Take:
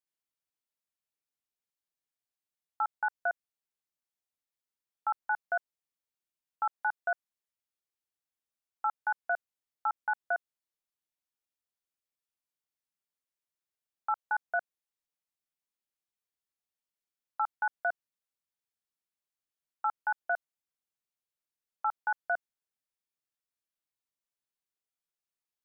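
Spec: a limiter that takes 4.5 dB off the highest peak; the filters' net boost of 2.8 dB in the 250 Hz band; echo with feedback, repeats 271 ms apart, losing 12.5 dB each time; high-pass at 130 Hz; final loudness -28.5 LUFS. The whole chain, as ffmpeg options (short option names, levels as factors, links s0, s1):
-af "highpass=130,equalizer=f=250:t=o:g=4.5,alimiter=level_in=1.26:limit=0.0631:level=0:latency=1,volume=0.794,aecho=1:1:271|542|813:0.237|0.0569|0.0137,volume=3.35"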